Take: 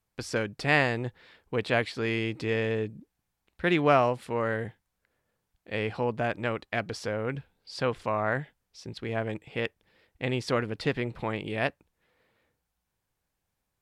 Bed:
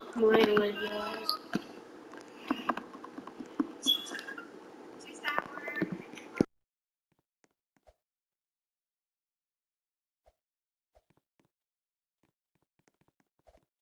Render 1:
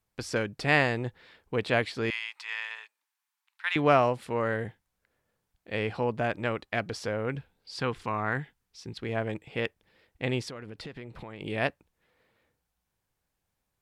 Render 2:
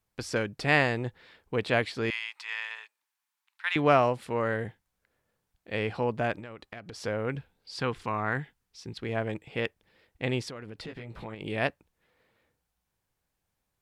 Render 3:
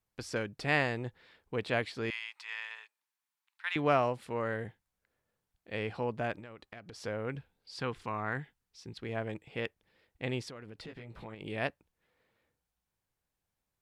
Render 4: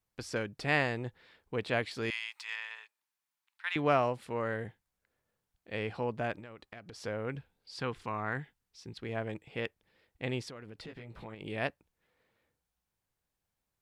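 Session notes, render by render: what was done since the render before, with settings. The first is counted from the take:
2.10–3.76 s: Chebyshev high-pass 930 Hz, order 4; 7.75–8.98 s: peaking EQ 590 Hz -12.5 dB 0.33 oct; 10.48–11.41 s: compression, threshold -38 dBFS
6.39–7.04 s: compression 12:1, threshold -38 dBFS; 10.86–11.35 s: doubling 18 ms -3.5 dB
trim -5.5 dB
1.91–2.56 s: treble shelf 4.1 kHz +8 dB

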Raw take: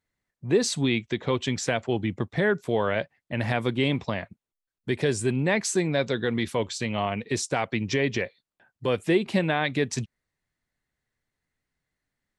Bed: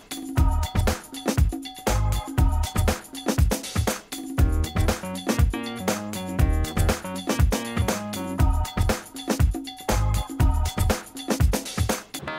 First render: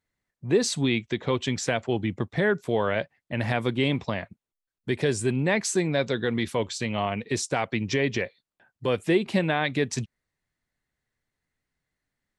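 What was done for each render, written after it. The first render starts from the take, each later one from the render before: no audible change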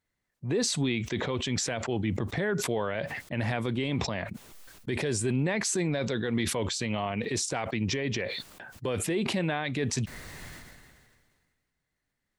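peak limiter -20 dBFS, peak gain reduction 10 dB; decay stretcher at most 32 dB/s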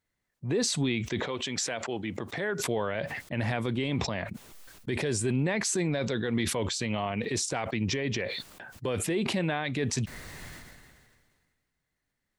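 1.23–2.60 s: high-pass 360 Hz 6 dB/octave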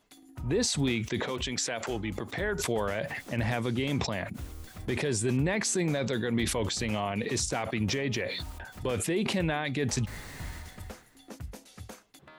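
add bed -21 dB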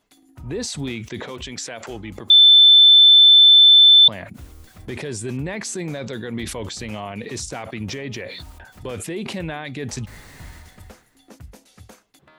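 2.30–4.08 s: bleep 3.53 kHz -6.5 dBFS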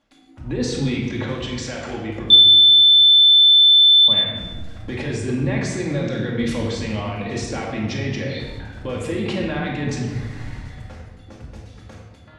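distance through air 88 m; simulated room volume 1100 m³, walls mixed, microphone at 2.3 m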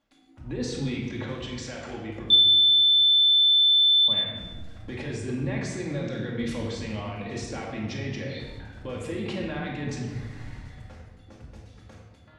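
trim -7.5 dB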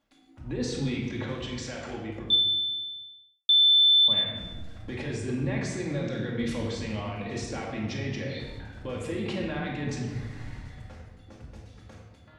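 1.85–3.49 s: studio fade out

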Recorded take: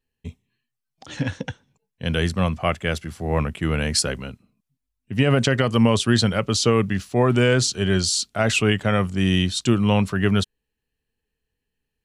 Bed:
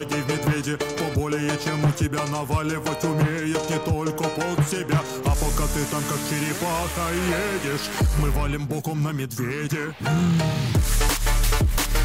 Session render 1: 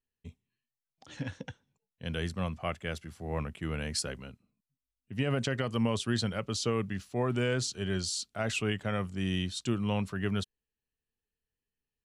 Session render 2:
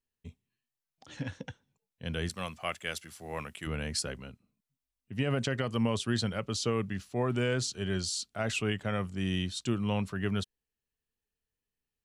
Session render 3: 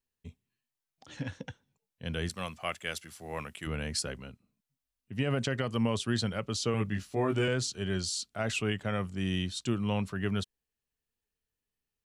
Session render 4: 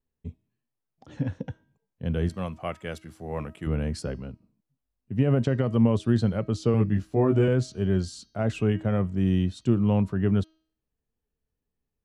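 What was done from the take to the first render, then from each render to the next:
trim -12 dB
2.29–3.67 s: tilt EQ +3 dB/octave
6.72–7.48 s: doubling 19 ms -2 dB
tilt shelf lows +9.5 dB, about 1.2 kHz; de-hum 318.1 Hz, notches 20

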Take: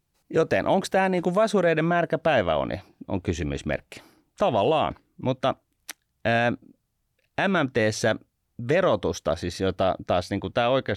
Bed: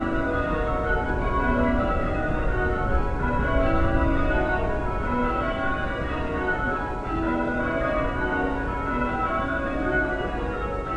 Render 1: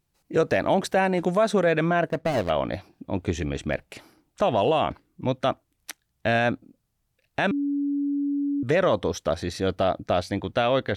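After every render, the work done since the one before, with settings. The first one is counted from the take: 2.09–2.50 s: median filter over 41 samples; 7.51–8.63 s: bleep 284 Hz -22.5 dBFS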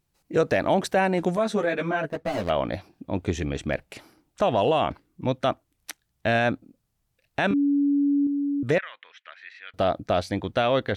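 1.36–2.44 s: three-phase chorus; 7.48–8.27 s: doubling 25 ms -3 dB; 8.78–9.74 s: Butterworth band-pass 2.1 kHz, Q 1.9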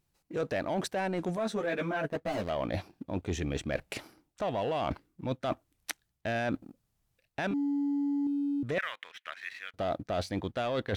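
waveshaping leveller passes 1; reverse; compression 6:1, threshold -30 dBFS, peak gain reduction 13.5 dB; reverse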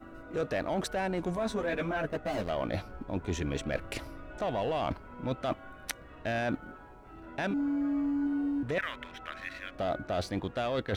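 add bed -23 dB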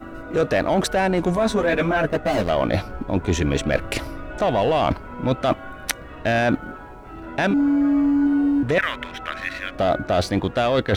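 trim +12 dB

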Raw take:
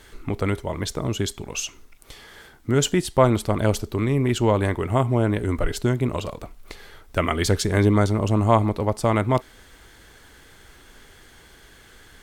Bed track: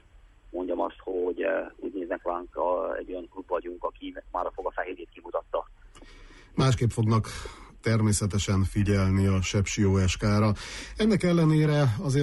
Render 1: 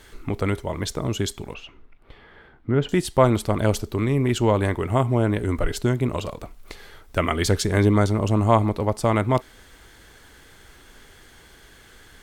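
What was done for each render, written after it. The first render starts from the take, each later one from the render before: 1.54–2.89 s: distance through air 470 m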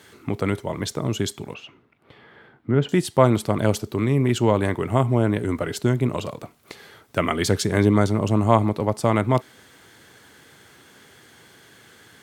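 high-pass 110 Hz 24 dB/octave; bass shelf 180 Hz +4 dB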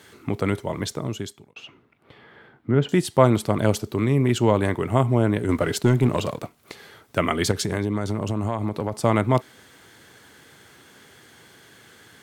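0.80–1.56 s: fade out; 5.49–6.58 s: waveshaping leveller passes 1; 7.51–8.93 s: compression, threshold -20 dBFS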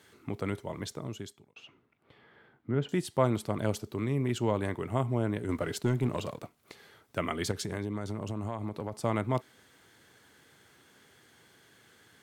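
trim -10 dB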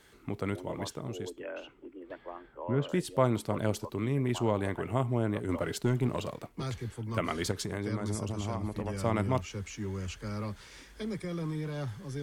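add bed track -13.5 dB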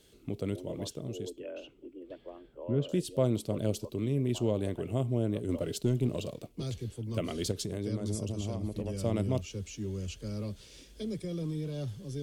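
high-order bell 1.3 kHz -13 dB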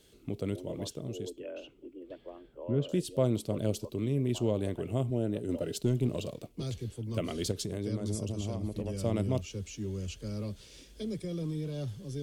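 5.10–5.75 s: comb of notches 1.1 kHz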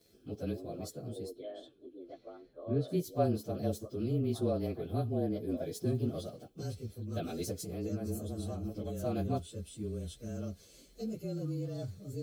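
frequency axis rescaled in octaves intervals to 109%; comb of notches 930 Hz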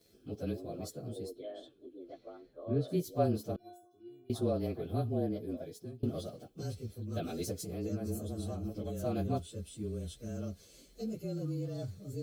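3.56–4.30 s: inharmonic resonator 350 Hz, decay 0.61 s, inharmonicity 0.008; 5.20–6.03 s: fade out, to -23.5 dB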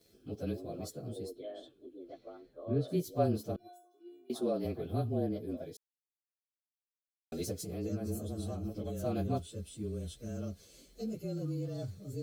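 3.67–4.64 s: high-pass 480 Hz -> 160 Hz 24 dB/octave; 5.77–7.32 s: mute

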